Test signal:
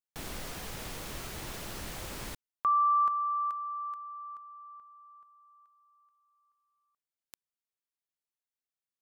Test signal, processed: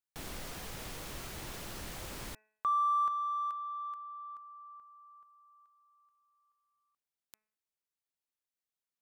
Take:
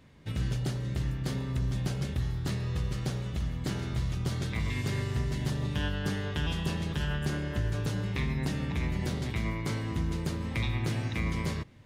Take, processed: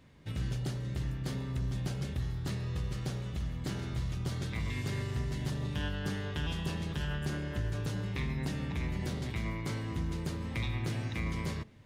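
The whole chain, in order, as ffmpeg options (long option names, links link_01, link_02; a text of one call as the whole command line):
ffmpeg -i in.wav -filter_complex "[0:a]asplit=2[link_01][link_02];[link_02]asoftclip=type=tanh:threshold=-37.5dB,volume=-10dB[link_03];[link_01][link_03]amix=inputs=2:normalize=0,bandreject=frequency=215.4:width_type=h:width=4,bandreject=frequency=430.8:width_type=h:width=4,bandreject=frequency=646.2:width_type=h:width=4,bandreject=frequency=861.6:width_type=h:width=4,bandreject=frequency=1077:width_type=h:width=4,bandreject=frequency=1292.4:width_type=h:width=4,bandreject=frequency=1507.8:width_type=h:width=4,bandreject=frequency=1723.2:width_type=h:width=4,bandreject=frequency=1938.6:width_type=h:width=4,bandreject=frequency=2154:width_type=h:width=4,bandreject=frequency=2369.4:width_type=h:width=4,bandreject=frequency=2584.8:width_type=h:width=4,volume=-4.5dB" out.wav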